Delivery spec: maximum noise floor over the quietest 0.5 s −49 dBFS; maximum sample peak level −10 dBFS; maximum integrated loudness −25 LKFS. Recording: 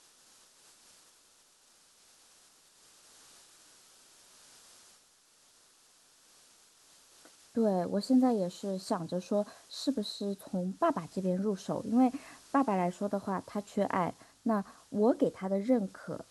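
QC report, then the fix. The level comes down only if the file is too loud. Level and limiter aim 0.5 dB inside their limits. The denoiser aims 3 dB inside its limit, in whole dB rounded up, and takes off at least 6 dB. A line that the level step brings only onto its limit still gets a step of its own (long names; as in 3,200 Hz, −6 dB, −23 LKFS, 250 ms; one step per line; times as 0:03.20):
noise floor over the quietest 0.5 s −65 dBFS: in spec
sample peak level −15.5 dBFS: in spec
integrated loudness −32.0 LKFS: in spec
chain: no processing needed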